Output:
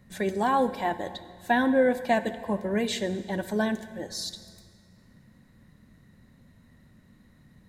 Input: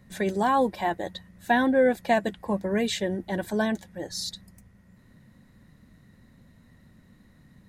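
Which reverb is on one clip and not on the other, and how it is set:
dense smooth reverb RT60 1.9 s, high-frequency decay 0.85×, DRR 11.5 dB
level −1.5 dB

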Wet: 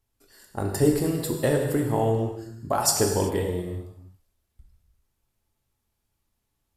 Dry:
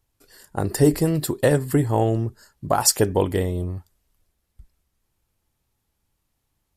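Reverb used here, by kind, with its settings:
reverb whose tail is shaped and stops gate 410 ms falling, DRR 1.5 dB
level −5.5 dB

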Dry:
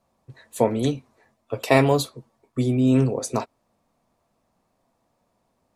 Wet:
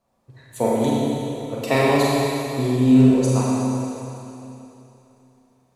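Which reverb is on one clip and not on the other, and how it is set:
four-comb reverb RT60 3 s, combs from 31 ms, DRR −5.5 dB
level −3.5 dB

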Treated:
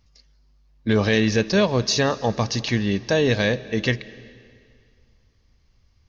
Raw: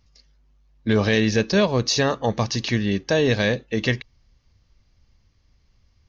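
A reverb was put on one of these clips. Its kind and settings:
comb and all-pass reverb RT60 2.2 s, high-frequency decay 0.95×, pre-delay 115 ms, DRR 18.5 dB

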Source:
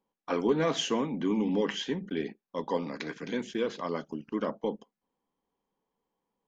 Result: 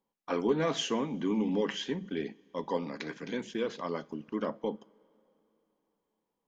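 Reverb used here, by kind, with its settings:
coupled-rooms reverb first 0.3 s, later 3.4 s, from −18 dB, DRR 19 dB
level −2 dB

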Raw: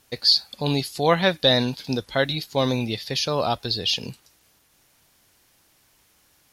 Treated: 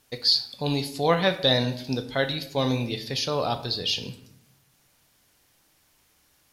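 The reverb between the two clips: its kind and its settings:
rectangular room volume 150 cubic metres, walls mixed, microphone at 0.38 metres
level −3.5 dB

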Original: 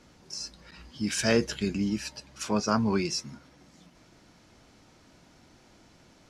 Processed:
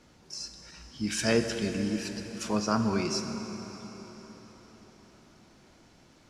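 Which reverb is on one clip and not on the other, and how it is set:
dense smooth reverb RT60 5 s, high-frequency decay 0.8×, DRR 6 dB
level −2 dB

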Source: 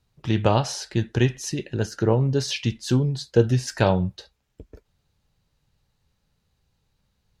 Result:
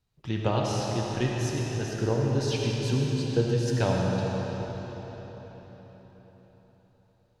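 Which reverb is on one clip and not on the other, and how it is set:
comb and all-pass reverb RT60 4.8 s, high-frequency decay 0.85×, pre-delay 30 ms, DRR −2 dB
level −8 dB

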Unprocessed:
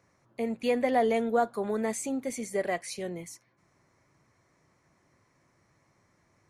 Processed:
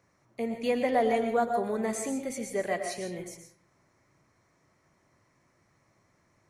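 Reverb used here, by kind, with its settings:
comb and all-pass reverb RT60 0.57 s, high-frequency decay 0.65×, pre-delay 80 ms, DRR 5.5 dB
level −1 dB

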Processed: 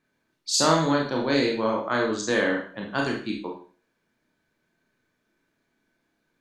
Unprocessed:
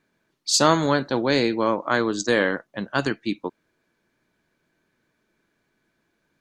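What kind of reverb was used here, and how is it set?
four-comb reverb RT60 0.42 s, combs from 25 ms, DRR −0.5 dB
level −5.5 dB

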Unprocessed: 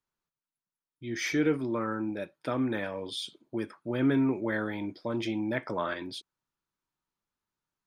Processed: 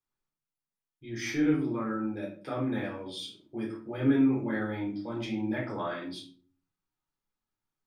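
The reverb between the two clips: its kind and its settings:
rectangular room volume 320 cubic metres, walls furnished, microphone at 3.9 metres
level −9 dB

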